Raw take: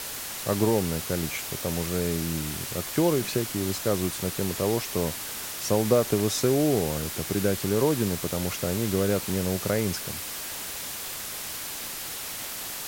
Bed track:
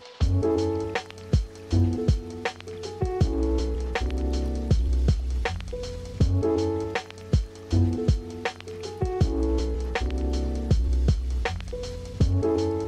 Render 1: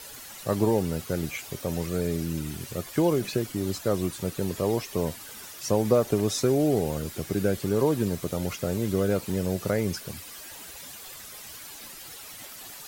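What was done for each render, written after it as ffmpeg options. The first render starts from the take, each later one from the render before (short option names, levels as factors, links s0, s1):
-af "afftdn=nr=11:nf=-36"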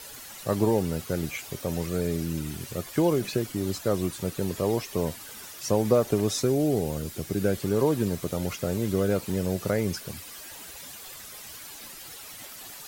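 -filter_complex "[0:a]asettb=1/sr,asplit=3[s0][s1][s2];[s0]atrim=end=6.424[s3];[s1]atrim=start=6.42:end=7.42,asetpts=PTS-STARTPTS,afade=t=in:d=0.004:c=qsin,afade=t=out:st=0.996:d=0.004:c=qsin,equalizer=f=1200:t=o:w=2.8:g=-3.5[s4];[s2]atrim=start=7.416[s5];[s3][s4]acrossfade=d=0.004:c1=hsin:c2=qsin[s6];[s6][s5]acrossfade=d=0.004:c1=qsin:c2=hsin"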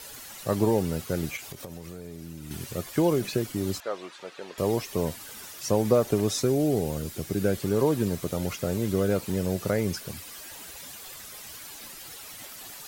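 -filter_complex "[0:a]asettb=1/sr,asplit=3[s0][s1][s2];[s0]atrim=end=1.364[s3];[s1]atrim=start=1.36:end=2.51,asetpts=PTS-STARTPTS,afade=t=in:d=0.004:c=qsin,afade=t=out:st=1.146:d=0.004:c=qsin,acompressor=threshold=0.0178:ratio=10:attack=3.2:release=140:knee=1:detection=peak[s4];[s2]atrim=start=2.506[s5];[s3][s4]acrossfade=d=0.004:c1=hsin:c2=qsin[s6];[s6][s5]acrossfade=d=0.004:c1=qsin:c2=hsin,asettb=1/sr,asplit=3[s7][s8][s9];[s7]atrim=end=3.804[s10];[s8]atrim=start=3.8:end=4.58,asetpts=PTS-STARTPTS,afade=t=in:d=0.004:c=qsin,afade=t=out:st=0.776:d=0.004:c=qsin,highpass=670,lowpass=3500[s11];[s9]atrim=start=4.576[s12];[s10][s11]acrossfade=d=0.004:c1=hsin:c2=qsin[s13];[s13][s12]acrossfade=d=0.004:c1=qsin:c2=hsin"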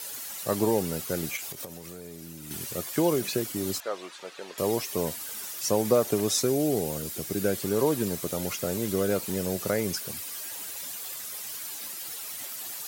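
-af "highpass=f=200:p=1,highshelf=f=5900:g=8"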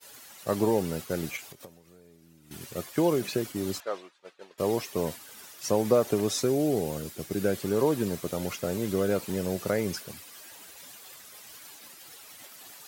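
-af "agate=range=0.0224:threshold=0.0251:ratio=3:detection=peak,highshelf=f=5400:g=-8.5"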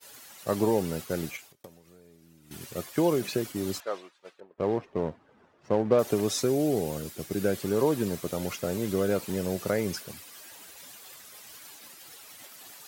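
-filter_complex "[0:a]asettb=1/sr,asplit=3[s0][s1][s2];[s0]atrim=end=4.404[s3];[s1]atrim=start=4.4:end=5.99,asetpts=PTS-STARTPTS,afade=t=in:d=0.004:c=qsin,afade=t=out:st=1.586:d=0.004:c=qsin,adynamicsmooth=sensitivity=2:basefreq=850[s4];[s2]atrim=start=5.986[s5];[s3][s4]acrossfade=d=0.004:c1=hsin:c2=qsin[s6];[s6][s5]acrossfade=d=0.004:c1=qsin:c2=hsin,asplit=2[s7][s8];[s7]atrim=end=1.64,asetpts=PTS-STARTPTS,afade=t=out:st=1.22:d=0.42[s9];[s8]atrim=start=1.64,asetpts=PTS-STARTPTS,afade=t=in:d=0.004:c=hsin[s10];[s9][s10]concat=n=2:v=0:a=1"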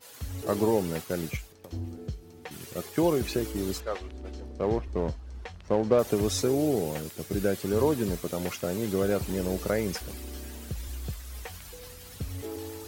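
-filter_complex "[1:a]volume=0.2[s0];[0:a][s0]amix=inputs=2:normalize=0"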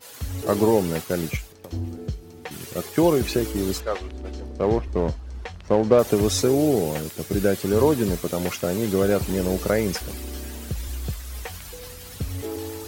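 -af "volume=2"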